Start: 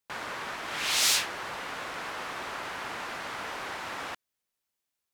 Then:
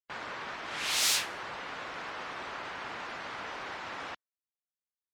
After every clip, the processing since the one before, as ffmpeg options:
-af "afftdn=nr=18:nf=-52,volume=-3dB"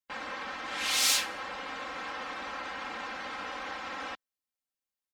-af "aecho=1:1:3.8:0.92,volume=-1dB"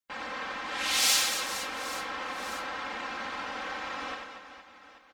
-af "aecho=1:1:90|234|464.4|833|1423:0.631|0.398|0.251|0.158|0.1"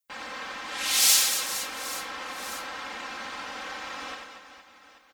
-af "crystalizer=i=2:c=0,volume=-2dB"

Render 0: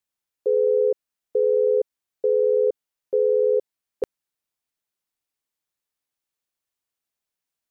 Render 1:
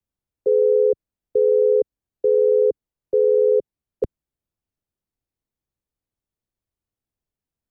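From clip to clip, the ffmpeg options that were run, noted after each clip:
-filter_complex "[0:a]tiltshelf=f=660:g=9.5,acrossover=split=110|280|440[a][b][c][d];[a]acontrast=77[e];[e][b][c][d]amix=inputs=4:normalize=0"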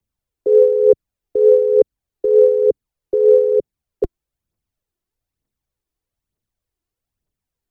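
-af "aphaser=in_gain=1:out_gain=1:delay=3.1:decay=0.51:speed=1.1:type=triangular,volume=3dB"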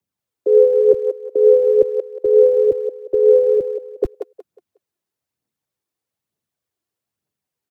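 -filter_complex "[0:a]acrossover=split=100|230|400[a][b][c][d];[a]acrusher=bits=6:mix=0:aa=0.000001[e];[d]aecho=1:1:182|364|546|728:0.668|0.187|0.0524|0.0147[f];[e][b][c][f]amix=inputs=4:normalize=0"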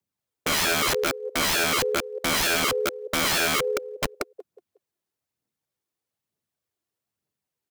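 -af "aeval=exprs='(mod(6.31*val(0)+1,2)-1)/6.31':c=same,volume=-2.5dB"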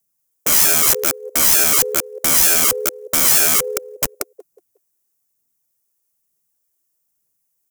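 -af "aexciter=amount=3.9:drive=7.7:freq=5.6k,volume=1dB"

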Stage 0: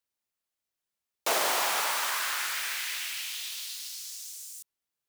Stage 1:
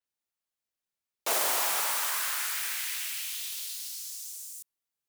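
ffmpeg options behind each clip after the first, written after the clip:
-af "adynamicequalizer=threshold=0.00501:dfrequency=6700:dqfactor=0.7:tfrequency=6700:tqfactor=0.7:attack=5:release=100:ratio=0.375:range=4:mode=boostabove:tftype=highshelf,volume=-3.5dB"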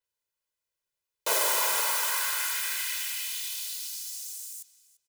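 -filter_complex "[0:a]aecho=1:1:2:0.74,asplit=2[a][b];[b]adelay=343,lowpass=f=4.2k:p=1,volume=-13.5dB,asplit=2[c][d];[d]adelay=343,lowpass=f=4.2k:p=1,volume=0.18[e];[a][c][e]amix=inputs=3:normalize=0"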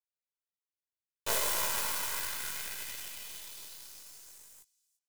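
-af "flanger=delay=17:depth=5.9:speed=0.67,aeval=exprs='0.141*(cos(1*acos(clip(val(0)/0.141,-1,1)))-cos(1*PI/2))+0.0447*(cos(2*acos(clip(val(0)/0.141,-1,1)))-cos(2*PI/2))+0.0178*(cos(3*acos(clip(val(0)/0.141,-1,1)))-cos(3*PI/2))+0.00794*(cos(6*acos(clip(val(0)/0.141,-1,1)))-cos(6*PI/2))+0.00794*(cos(7*acos(clip(val(0)/0.141,-1,1)))-cos(7*PI/2))':c=same"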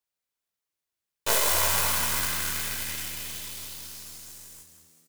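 -filter_complex "[0:a]asplit=8[a][b][c][d][e][f][g][h];[b]adelay=194,afreqshift=80,volume=-8.5dB[i];[c]adelay=388,afreqshift=160,volume=-13.7dB[j];[d]adelay=582,afreqshift=240,volume=-18.9dB[k];[e]adelay=776,afreqshift=320,volume=-24.1dB[l];[f]adelay=970,afreqshift=400,volume=-29.3dB[m];[g]adelay=1164,afreqshift=480,volume=-34.5dB[n];[h]adelay=1358,afreqshift=560,volume=-39.7dB[o];[a][i][j][k][l][m][n][o]amix=inputs=8:normalize=0,volume=7dB"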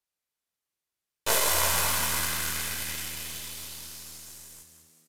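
-af "aresample=32000,aresample=44100"

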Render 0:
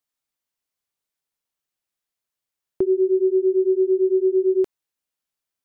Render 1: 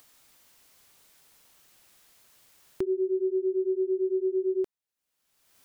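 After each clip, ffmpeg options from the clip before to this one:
-af "acompressor=mode=upward:threshold=-25dB:ratio=2.5,volume=-8.5dB"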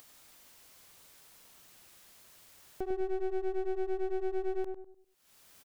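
-filter_complex "[0:a]acompressor=mode=upward:threshold=-46dB:ratio=2.5,aeval=exprs='clip(val(0),-1,0.00841)':c=same,asplit=2[a][b];[b]adelay=100,lowpass=f=900:p=1,volume=-4dB,asplit=2[c][d];[d]adelay=100,lowpass=f=900:p=1,volume=0.39,asplit=2[e][f];[f]adelay=100,lowpass=f=900:p=1,volume=0.39,asplit=2[g][h];[h]adelay=100,lowpass=f=900:p=1,volume=0.39,asplit=2[i][j];[j]adelay=100,lowpass=f=900:p=1,volume=0.39[k];[a][c][e][g][i][k]amix=inputs=6:normalize=0,volume=-4dB"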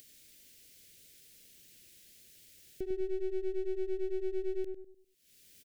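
-af "asuperstop=centerf=990:order=4:qfactor=0.6"

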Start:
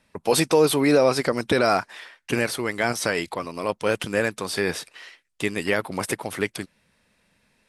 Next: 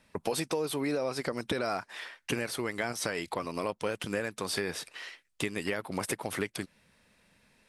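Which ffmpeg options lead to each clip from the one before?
-af "acompressor=threshold=-29dB:ratio=6"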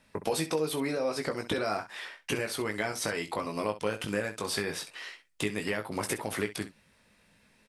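-af "aecho=1:1:19|65:0.501|0.224"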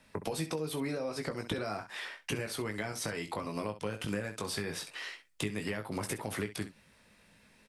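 -filter_complex "[0:a]acrossover=split=200[a][b];[b]acompressor=threshold=-38dB:ratio=3[c];[a][c]amix=inputs=2:normalize=0,volume=1.5dB"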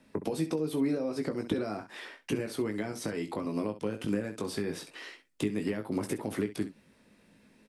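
-af "equalizer=f=290:w=0.83:g=12.5,volume=-4dB"

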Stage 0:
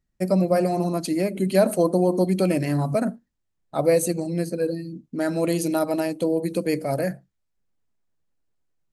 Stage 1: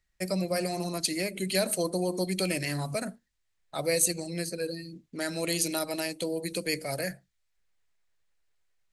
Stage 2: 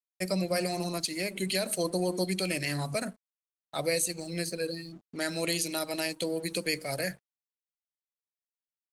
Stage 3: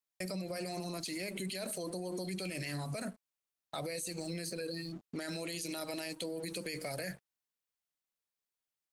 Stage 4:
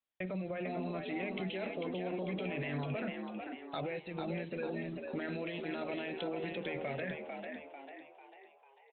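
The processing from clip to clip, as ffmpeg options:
-filter_complex "[0:a]equalizer=f=125:t=o:w=1:g=-7,equalizer=f=250:t=o:w=1:g=-11,equalizer=f=2k:t=o:w=1:g=8,equalizer=f=4k:t=o:w=1:g=5,equalizer=f=8k:t=o:w=1:g=4,acrossover=split=350|3000[a][b][c];[b]acompressor=threshold=-52dB:ratio=1.5[d];[a][d][c]amix=inputs=3:normalize=0"
-af "equalizer=f=3.1k:t=o:w=1.7:g=3,alimiter=limit=-17.5dB:level=0:latency=1:release=299,aeval=exprs='sgn(val(0))*max(abs(val(0))-0.0015,0)':c=same"
-af "alimiter=level_in=5dB:limit=-24dB:level=0:latency=1:release=19,volume=-5dB,acompressor=threshold=-39dB:ratio=6,volume=3dB"
-filter_complex "[0:a]asplit=2[a][b];[b]asplit=6[c][d][e][f][g][h];[c]adelay=446,afreqshift=68,volume=-5dB[i];[d]adelay=892,afreqshift=136,volume=-11.6dB[j];[e]adelay=1338,afreqshift=204,volume=-18.1dB[k];[f]adelay=1784,afreqshift=272,volume=-24.7dB[l];[g]adelay=2230,afreqshift=340,volume=-31.2dB[m];[h]adelay=2676,afreqshift=408,volume=-37.8dB[n];[i][j][k][l][m][n]amix=inputs=6:normalize=0[o];[a][o]amix=inputs=2:normalize=0,aresample=8000,aresample=44100,volume=1dB"

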